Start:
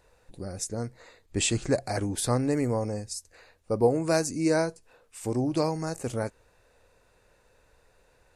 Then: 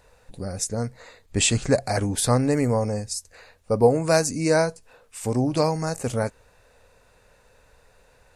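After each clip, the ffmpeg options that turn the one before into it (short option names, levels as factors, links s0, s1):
-af "equalizer=f=340:t=o:w=0.25:g=-9.5,volume=2"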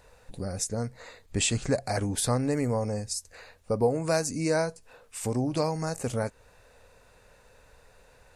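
-af "acompressor=threshold=0.0224:ratio=1.5"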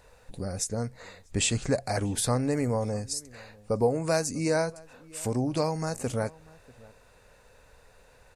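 -filter_complex "[0:a]asplit=2[s0][s1];[s1]adelay=641.4,volume=0.0708,highshelf=f=4000:g=-14.4[s2];[s0][s2]amix=inputs=2:normalize=0"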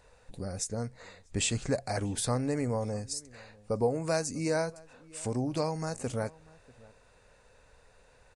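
-af "aresample=22050,aresample=44100,volume=0.668"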